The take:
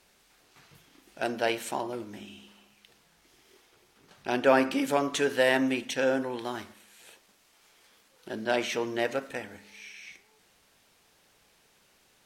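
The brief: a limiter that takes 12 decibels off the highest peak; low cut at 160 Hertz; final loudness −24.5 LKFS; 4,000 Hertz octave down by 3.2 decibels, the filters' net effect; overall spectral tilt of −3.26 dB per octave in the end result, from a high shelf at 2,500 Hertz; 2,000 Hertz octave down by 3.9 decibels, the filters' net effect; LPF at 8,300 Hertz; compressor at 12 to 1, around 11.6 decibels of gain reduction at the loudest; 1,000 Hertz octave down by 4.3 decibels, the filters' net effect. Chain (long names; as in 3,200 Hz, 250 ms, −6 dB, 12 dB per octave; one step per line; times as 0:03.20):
high-pass filter 160 Hz
low-pass filter 8,300 Hz
parametric band 1,000 Hz −6 dB
parametric band 2,000 Hz −4 dB
high-shelf EQ 2,500 Hz +6.5 dB
parametric band 4,000 Hz −8 dB
downward compressor 12 to 1, threshold −29 dBFS
level +16.5 dB
brickwall limiter −14 dBFS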